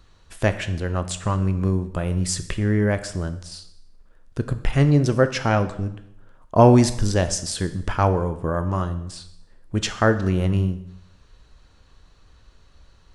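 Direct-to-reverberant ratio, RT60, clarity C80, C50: 10.0 dB, 0.80 s, 15.5 dB, 13.0 dB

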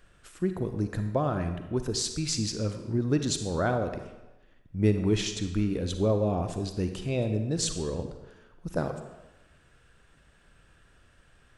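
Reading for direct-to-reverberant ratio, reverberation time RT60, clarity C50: 7.0 dB, 1.0 s, 8.0 dB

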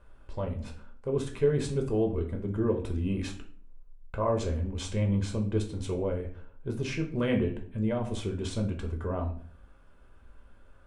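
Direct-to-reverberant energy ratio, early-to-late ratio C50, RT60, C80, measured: 2.0 dB, 10.5 dB, 0.50 s, 15.0 dB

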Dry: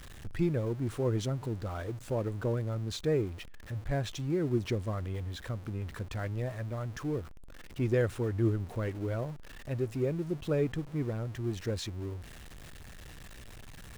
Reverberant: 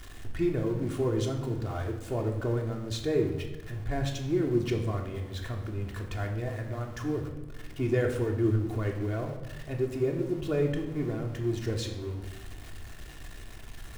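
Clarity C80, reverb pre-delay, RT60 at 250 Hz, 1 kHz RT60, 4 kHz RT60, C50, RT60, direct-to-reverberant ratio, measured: 9.5 dB, 3 ms, 1.7 s, 1.1 s, 0.80 s, 7.0 dB, 1.2 s, 0.5 dB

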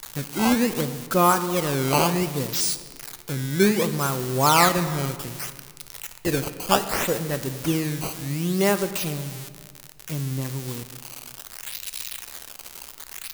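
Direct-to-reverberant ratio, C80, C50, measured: 10.0 dB, 13.0 dB, 11.5 dB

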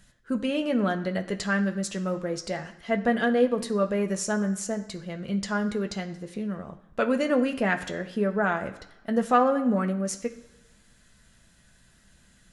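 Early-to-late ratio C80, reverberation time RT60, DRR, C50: 15.0 dB, 1.1 s, 4.0 dB, 13.0 dB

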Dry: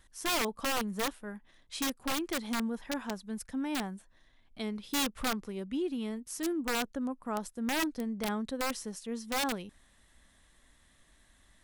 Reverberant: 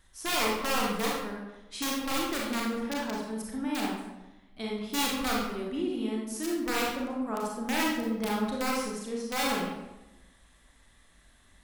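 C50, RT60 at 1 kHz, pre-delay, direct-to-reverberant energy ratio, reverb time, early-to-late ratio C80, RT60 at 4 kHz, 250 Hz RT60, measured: 0.0 dB, 0.95 s, 30 ms, -3.5 dB, 1.0 s, 4.0 dB, 0.65 s, 1.1 s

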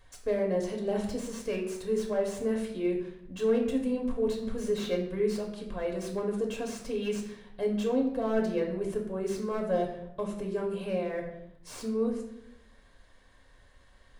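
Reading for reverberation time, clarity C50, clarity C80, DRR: 0.80 s, 6.5 dB, 9.5 dB, 0.5 dB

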